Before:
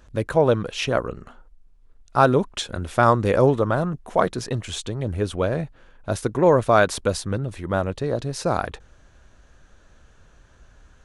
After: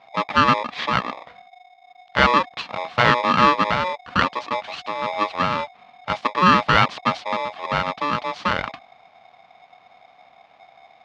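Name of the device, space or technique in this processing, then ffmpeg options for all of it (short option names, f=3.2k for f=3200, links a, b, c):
ring modulator pedal into a guitar cabinet: -af "aeval=exprs='val(0)*sgn(sin(2*PI*730*n/s))':c=same,highpass=81,equalizer=f=90:t=q:w=4:g=-5,equalizer=f=360:t=q:w=4:g=-9,equalizer=f=1.1k:t=q:w=4:g=6,lowpass=f=4.1k:w=0.5412,lowpass=f=4.1k:w=1.3066"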